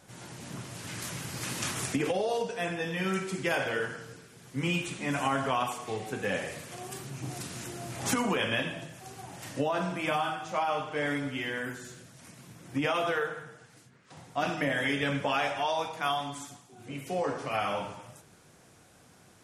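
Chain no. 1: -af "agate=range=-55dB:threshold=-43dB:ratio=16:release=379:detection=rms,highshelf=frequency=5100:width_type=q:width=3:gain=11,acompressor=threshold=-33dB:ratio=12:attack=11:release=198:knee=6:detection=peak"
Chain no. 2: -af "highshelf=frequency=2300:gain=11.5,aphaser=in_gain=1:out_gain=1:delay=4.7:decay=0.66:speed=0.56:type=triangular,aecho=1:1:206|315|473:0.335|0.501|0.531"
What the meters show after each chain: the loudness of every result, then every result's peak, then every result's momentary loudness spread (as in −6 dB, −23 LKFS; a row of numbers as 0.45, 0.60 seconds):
−36.0, −24.0 LKFS; −19.5, −6.0 dBFS; 7, 12 LU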